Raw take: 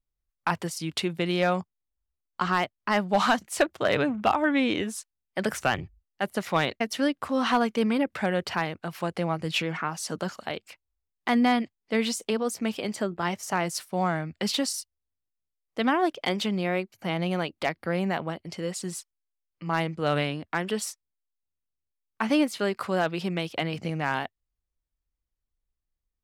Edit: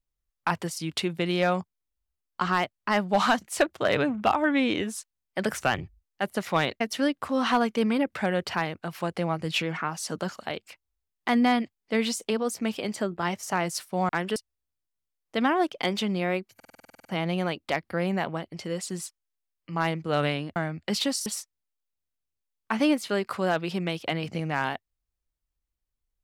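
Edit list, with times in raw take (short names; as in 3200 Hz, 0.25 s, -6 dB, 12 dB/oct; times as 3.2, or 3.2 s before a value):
14.09–14.79 swap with 20.49–20.76
16.98 stutter 0.05 s, 11 plays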